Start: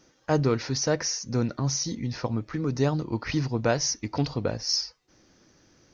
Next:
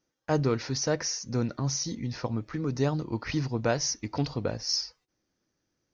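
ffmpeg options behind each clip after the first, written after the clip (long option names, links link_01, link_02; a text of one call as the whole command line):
ffmpeg -i in.wav -af "agate=range=-17dB:threshold=-55dB:ratio=16:detection=peak,volume=-2.5dB" out.wav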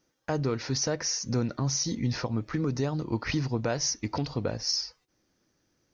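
ffmpeg -i in.wav -af "alimiter=level_in=1dB:limit=-24dB:level=0:latency=1:release=428,volume=-1dB,volume=6.5dB" out.wav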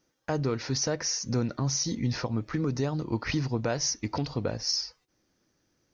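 ffmpeg -i in.wav -af anull out.wav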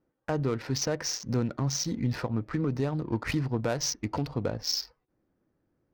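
ffmpeg -i in.wav -af "adynamicsmooth=sensitivity=7:basefreq=1300" out.wav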